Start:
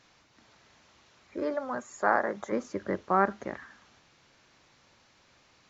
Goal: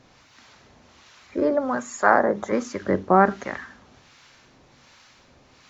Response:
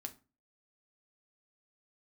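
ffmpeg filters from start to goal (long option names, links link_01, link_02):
-filter_complex "[0:a]acrossover=split=830[link_01][link_02];[link_01]aeval=exprs='val(0)*(1-0.7/2+0.7/2*cos(2*PI*1.3*n/s))':channel_layout=same[link_03];[link_02]aeval=exprs='val(0)*(1-0.7/2-0.7/2*cos(2*PI*1.3*n/s))':channel_layout=same[link_04];[link_03][link_04]amix=inputs=2:normalize=0,asplit=2[link_05][link_06];[1:a]atrim=start_sample=2205,lowshelf=frequency=220:gain=7.5[link_07];[link_06][link_07]afir=irnorm=-1:irlink=0,volume=-3.5dB[link_08];[link_05][link_08]amix=inputs=2:normalize=0,volume=8.5dB"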